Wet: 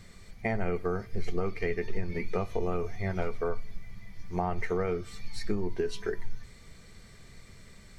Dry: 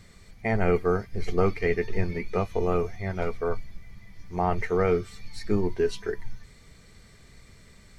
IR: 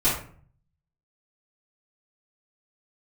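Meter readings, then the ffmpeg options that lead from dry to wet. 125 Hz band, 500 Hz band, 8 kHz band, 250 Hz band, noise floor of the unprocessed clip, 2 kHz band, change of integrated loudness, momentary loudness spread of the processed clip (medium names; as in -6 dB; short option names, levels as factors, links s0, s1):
-5.5 dB, -6.0 dB, no reading, -5.0 dB, -53 dBFS, -4.5 dB, -6.0 dB, 22 LU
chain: -filter_complex "[0:a]acompressor=threshold=0.0501:ratio=10,asplit=2[s0][s1];[1:a]atrim=start_sample=2205[s2];[s1][s2]afir=irnorm=-1:irlink=0,volume=0.0266[s3];[s0][s3]amix=inputs=2:normalize=0"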